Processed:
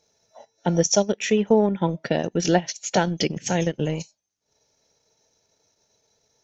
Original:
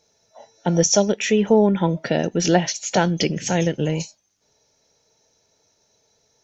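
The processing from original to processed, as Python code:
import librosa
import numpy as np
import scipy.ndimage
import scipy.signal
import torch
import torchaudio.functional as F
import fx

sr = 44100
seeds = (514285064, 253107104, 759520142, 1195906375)

y = fx.transient(x, sr, attack_db=2, sustain_db=-10)
y = F.gain(torch.from_numpy(y), -3.0).numpy()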